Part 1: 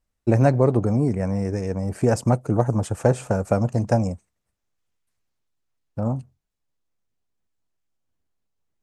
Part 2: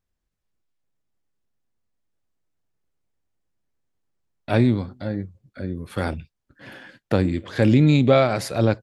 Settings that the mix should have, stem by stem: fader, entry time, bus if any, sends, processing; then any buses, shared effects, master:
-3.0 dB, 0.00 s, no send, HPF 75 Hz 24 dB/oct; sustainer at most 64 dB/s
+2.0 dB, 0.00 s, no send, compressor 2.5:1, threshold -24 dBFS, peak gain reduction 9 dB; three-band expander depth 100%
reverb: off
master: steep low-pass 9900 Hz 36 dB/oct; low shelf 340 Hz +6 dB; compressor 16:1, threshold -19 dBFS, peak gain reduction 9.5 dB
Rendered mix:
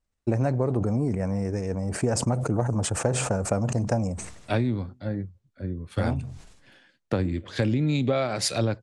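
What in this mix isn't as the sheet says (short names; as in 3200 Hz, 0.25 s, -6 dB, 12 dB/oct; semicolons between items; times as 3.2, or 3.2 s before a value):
stem 1: missing HPF 75 Hz 24 dB/oct; master: missing low shelf 340 Hz +6 dB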